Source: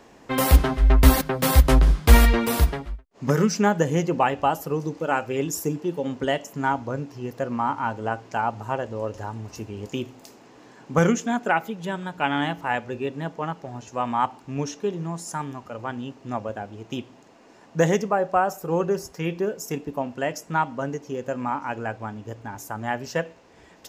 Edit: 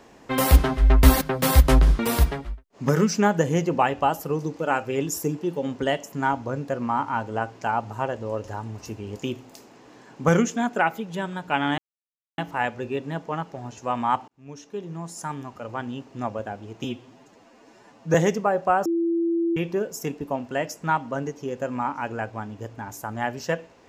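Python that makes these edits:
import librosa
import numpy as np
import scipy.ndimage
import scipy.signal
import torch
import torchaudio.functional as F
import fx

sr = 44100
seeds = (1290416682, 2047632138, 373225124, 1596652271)

y = fx.edit(x, sr, fx.cut(start_s=1.99, length_s=0.41),
    fx.cut(start_s=7.09, length_s=0.29),
    fx.insert_silence(at_s=12.48, length_s=0.6),
    fx.fade_in_span(start_s=14.38, length_s=1.62, curve='qsin'),
    fx.stretch_span(start_s=16.94, length_s=0.87, factor=1.5),
    fx.bleep(start_s=18.52, length_s=0.71, hz=336.0, db=-20.0), tone=tone)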